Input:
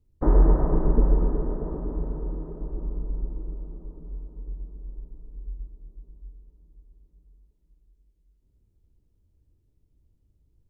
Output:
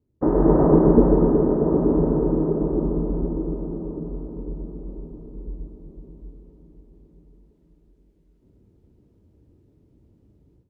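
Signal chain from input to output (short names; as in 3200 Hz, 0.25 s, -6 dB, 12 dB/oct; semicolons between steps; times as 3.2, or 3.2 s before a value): HPF 260 Hz 12 dB/oct; tilt -4 dB/oct; AGC gain up to 14.5 dB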